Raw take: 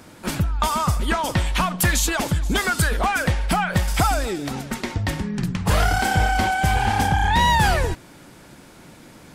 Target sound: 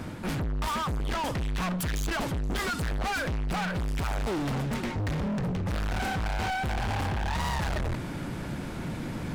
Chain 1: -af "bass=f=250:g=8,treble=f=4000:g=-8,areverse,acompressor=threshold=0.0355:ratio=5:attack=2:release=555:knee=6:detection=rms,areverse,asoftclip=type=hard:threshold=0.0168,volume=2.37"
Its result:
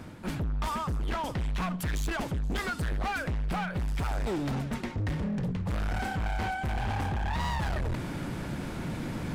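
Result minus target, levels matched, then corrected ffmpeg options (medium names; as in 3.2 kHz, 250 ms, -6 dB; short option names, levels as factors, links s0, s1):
compression: peak gain reduction +7.5 dB
-af "bass=f=250:g=8,treble=f=4000:g=-8,areverse,acompressor=threshold=0.106:ratio=5:attack=2:release=555:knee=6:detection=rms,areverse,asoftclip=type=hard:threshold=0.0168,volume=2.37"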